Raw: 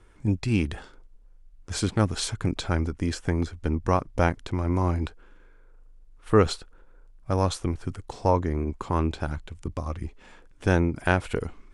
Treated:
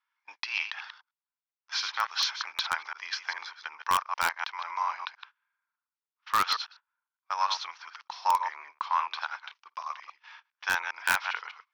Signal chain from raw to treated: chunks repeated in reverse 101 ms, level -8 dB; Chebyshev high-pass 950 Hz, order 4; gate -54 dBFS, range -22 dB; steep low-pass 5.8 kHz 72 dB/octave; in parallel at -3 dB: integer overflow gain 18.5 dB

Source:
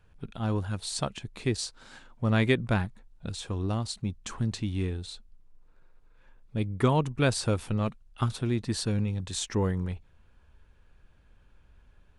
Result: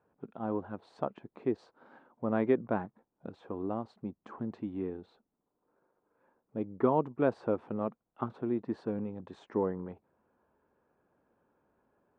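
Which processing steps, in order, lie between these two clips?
Butterworth band-pass 510 Hz, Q 0.62

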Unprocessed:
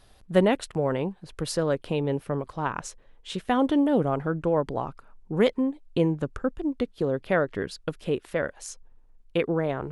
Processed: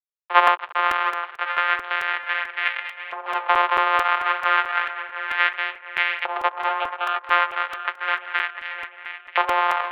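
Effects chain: sorted samples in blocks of 256 samples; gate with hold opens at -42 dBFS; in parallel at +2.5 dB: compression 12:1, threshold -36 dBFS, peak gain reduction 22 dB; on the sum: bit crusher 7-bit; 6.69–7.16 s: static phaser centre 1.2 kHz, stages 8; mistuned SSB +190 Hz 190–3000 Hz; on a send: tape echo 703 ms, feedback 73%, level -8 dB, low-pass 2.4 kHz; on the sum: LFO high-pass saw up 0.32 Hz 910–2100 Hz; crackling interface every 0.22 s, samples 128, repeat, from 0.47 s; trim +4 dB

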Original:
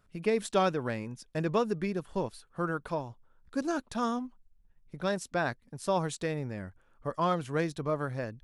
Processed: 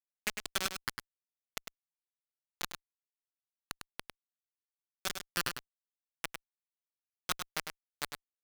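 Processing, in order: elliptic high-pass 1.3 kHz, stop band 40 dB; peaking EQ 5.7 kHz -7.5 dB 2.9 oct; compression 3:1, threshold -43 dBFS, peak gain reduction 8 dB; word length cut 6-bit, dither none; on a send: delay 102 ms -7 dB; on the sum: sliding maximum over 3 samples; trim +12 dB

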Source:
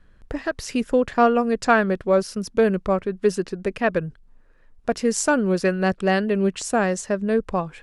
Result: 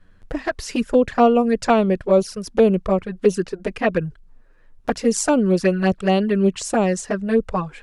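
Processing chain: touch-sensitive flanger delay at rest 11.4 ms, full sweep at -15.5 dBFS; trim +4.5 dB

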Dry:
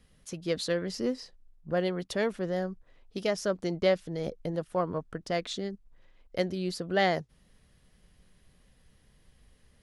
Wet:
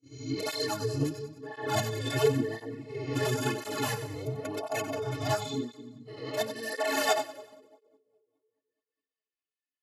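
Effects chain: reverse spectral sustain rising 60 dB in 1.25 s; integer overflow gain 18.5 dB; high-pass sweep 180 Hz -> 2 kHz, 5.26–8.99 s; dynamic bell 600 Hz, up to +6 dB, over -40 dBFS, Q 0.75; inharmonic resonator 210 Hz, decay 0.22 s, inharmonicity 0.03; gate -50 dBFS, range -29 dB; two-band feedback delay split 460 Hz, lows 209 ms, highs 93 ms, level -11 dB; formant-preserving pitch shift -8.5 st; cancelling through-zero flanger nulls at 0.96 Hz, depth 5.2 ms; trim +7.5 dB

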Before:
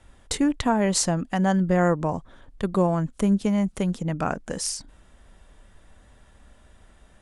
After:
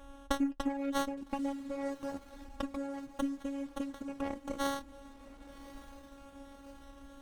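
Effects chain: compression 4:1, threshold -37 dBFS, peak gain reduction 17.5 dB; flange 0.86 Hz, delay 1.7 ms, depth 7.3 ms, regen +41%; robot voice 278 Hz; on a send: echo that smears into a reverb 1172 ms, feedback 51%, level -12 dB; on the sum: sliding maximum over 17 samples; trim +6.5 dB

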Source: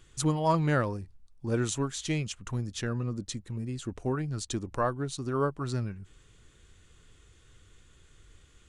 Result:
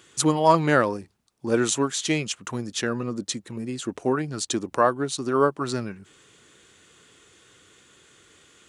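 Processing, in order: high-pass 240 Hz 12 dB/octave; trim +9 dB

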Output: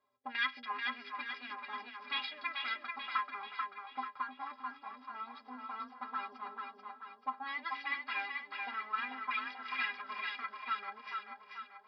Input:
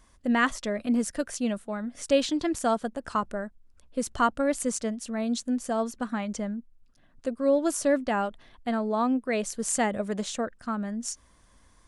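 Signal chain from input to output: comb filter that takes the minimum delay 0.83 ms; tilt EQ +3 dB/octave; 3.22–5.82 s: compression 6:1, threshold -32 dBFS, peak gain reduction 14 dB; auto-wah 530–2000 Hz, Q 2.8, up, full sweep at -26.5 dBFS; resampled via 11.025 kHz; inharmonic resonator 120 Hz, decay 0.23 s, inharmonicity 0.03; two-band feedback delay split 520 Hz, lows 313 ms, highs 437 ms, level -4 dB; trim +8.5 dB

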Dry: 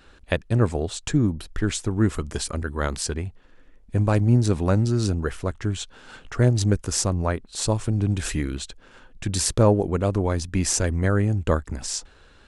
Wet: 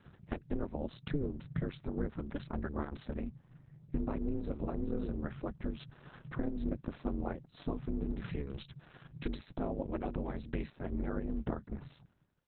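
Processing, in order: fade out at the end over 1.09 s; 8.58–10.72 s: treble shelf 2.1 kHz +11 dB; compression 16:1, threshold -25 dBFS, peak gain reduction 16 dB; ring modulator 140 Hz; tape spacing loss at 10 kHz 28 dB; trim -1.5 dB; Opus 6 kbps 48 kHz

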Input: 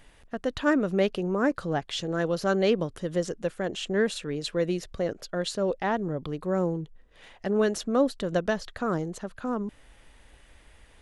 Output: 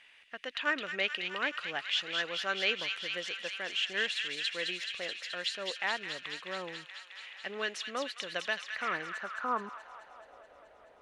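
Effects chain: 8.61–9.10 s: CVSD coder 16 kbps; feedback echo behind a high-pass 214 ms, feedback 80%, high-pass 2.2 kHz, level -4 dB; band-pass sweep 2.5 kHz -> 610 Hz, 8.55–10.42 s; trim +7 dB

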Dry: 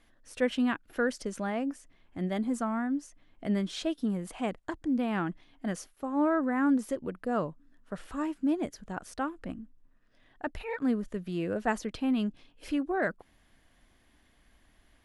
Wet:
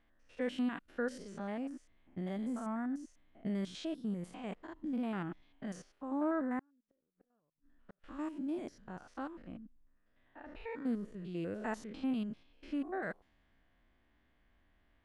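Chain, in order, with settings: spectrogram pixelated in time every 100 ms; 6.59–8.04 s: inverted gate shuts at -33 dBFS, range -41 dB; level-controlled noise filter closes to 2.7 kHz, open at -28 dBFS; trim -6 dB

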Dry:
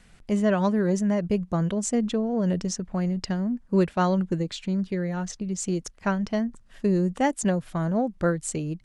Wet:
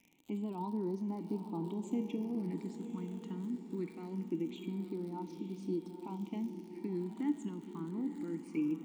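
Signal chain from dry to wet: high-pass 110 Hz 24 dB/octave; bass shelf 260 Hz -5.5 dB; peak limiter -19 dBFS, peak gain reduction 7.5 dB; vowel filter u; feedback comb 470 Hz, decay 0.65 s, mix 80%; crackle 87 per s -63 dBFS; phase shifter stages 8, 0.23 Hz, lowest notch 690–2400 Hz; on a send: echo that smears into a reverb 927 ms, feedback 41%, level -9 dB; on the sum: spring tank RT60 3.2 s, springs 41 ms, chirp 70 ms, DRR 14 dB; trim +18 dB

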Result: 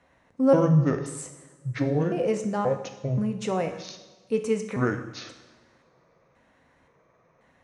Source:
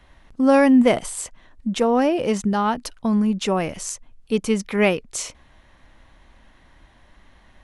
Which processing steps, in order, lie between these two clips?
pitch shift switched off and on -9 st, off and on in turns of 529 ms; cabinet simulation 120–9200 Hz, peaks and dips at 130 Hz +4 dB, 530 Hz +7 dB, 3.3 kHz -9 dB, 4.7 kHz -5 dB; two-slope reverb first 0.91 s, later 2.3 s, from -17 dB, DRR 5.5 dB; trim -7 dB

